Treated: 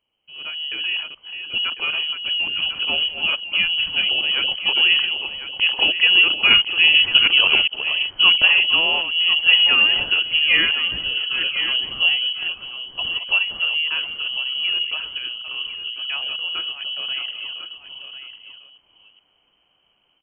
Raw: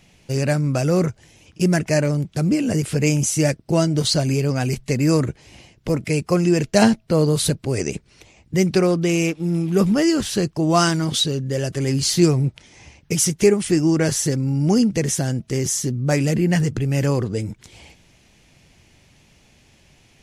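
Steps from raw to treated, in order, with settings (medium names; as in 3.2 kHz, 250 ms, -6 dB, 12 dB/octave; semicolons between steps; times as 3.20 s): chunks repeated in reverse 401 ms, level -9 dB; Doppler pass-by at 7.59 s, 16 m/s, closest 8.9 m; level rider gain up to 16 dB; on a send: delay 1049 ms -10.5 dB; on the sum: frequency inversion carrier 3.1 kHz; trim -1 dB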